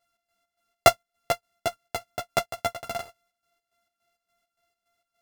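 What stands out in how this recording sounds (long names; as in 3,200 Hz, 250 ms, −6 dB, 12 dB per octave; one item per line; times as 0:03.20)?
a buzz of ramps at a fixed pitch in blocks of 64 samples
chopped level 3.5 Hz, depth 65%, duty 55%
a shimmering, thickened sound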